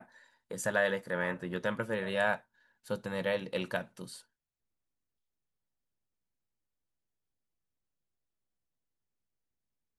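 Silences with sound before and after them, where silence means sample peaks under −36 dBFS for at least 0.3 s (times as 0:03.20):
0:02.36–0:02.90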